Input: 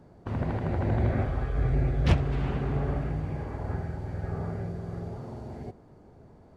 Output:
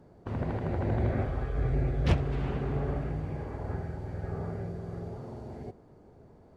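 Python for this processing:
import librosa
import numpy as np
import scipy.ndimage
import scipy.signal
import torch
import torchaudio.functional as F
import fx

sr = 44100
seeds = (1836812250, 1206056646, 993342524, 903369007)

y = fx.peak_eq(x, sr, hz=440.0, db=3.0, octaves=0.89)
y = y * librosa.db_to_amplitude(-3.0)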